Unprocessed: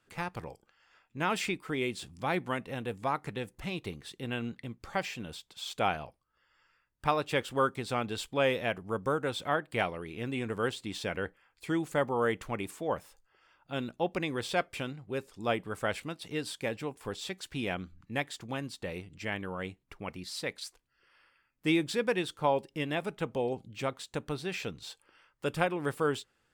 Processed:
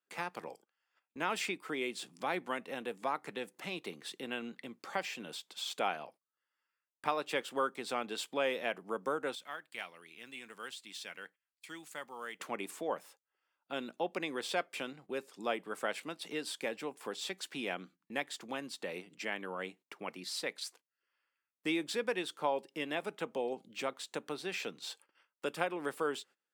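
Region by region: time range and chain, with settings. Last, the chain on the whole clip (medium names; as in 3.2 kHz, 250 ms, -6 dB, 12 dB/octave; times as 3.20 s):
9.35–12.40 s: amplifier tone stack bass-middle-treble 5-5-5 + short-mantissa float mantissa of 4-bit
whole clip: compression 1.5:1, threshold -44 dBFS; Bessel high-pass 300 Hz, order 8; gate -60 dBFS, range -21 dB; trim +3 dB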